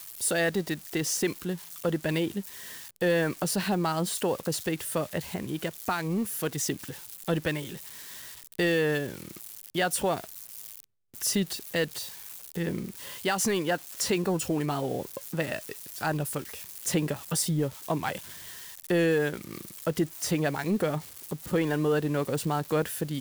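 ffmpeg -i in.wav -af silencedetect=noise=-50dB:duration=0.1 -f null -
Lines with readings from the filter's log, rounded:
silence_start: 10.84
silence_end: 11.14 | silence_duration: 0.30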